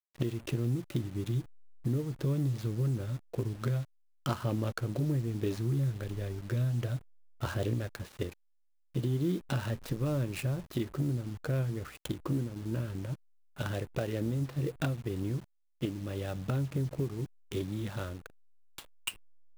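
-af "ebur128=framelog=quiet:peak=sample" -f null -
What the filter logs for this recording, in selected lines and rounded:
Integrated loudness:
  I:         -34.5 LUFS
  Threshold: -44.8 LUFS
Loudness range:
  LRA:         2.6 LU
  Threshold: -54.7 LUFS
  LRA low:   -36.1 LUFS
  LRA high:  -33.5 LUFS
Sample peak:
  Peak:      -15.7 dBFS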